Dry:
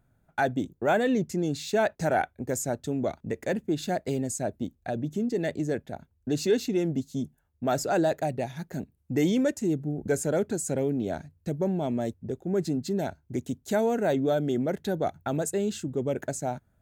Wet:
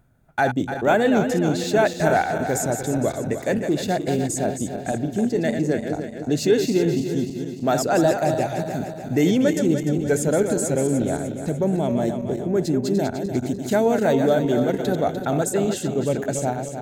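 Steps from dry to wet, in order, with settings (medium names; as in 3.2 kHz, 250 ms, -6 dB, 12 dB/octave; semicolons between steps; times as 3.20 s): backward echo that repeats 149 ms, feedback 71%, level -7 dB; reverse; upward compressor, threshold -41 dBFS; reverse; trim +5.5 dB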